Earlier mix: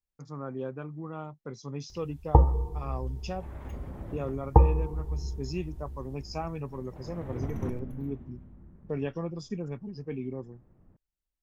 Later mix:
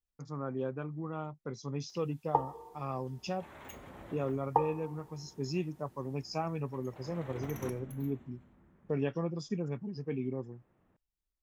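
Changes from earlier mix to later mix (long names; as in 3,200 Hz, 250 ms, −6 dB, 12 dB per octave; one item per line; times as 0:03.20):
first sound: add Bessel high-pass filter 840 Hz, order 2
second sound: add spectral tilt +4 dB per octave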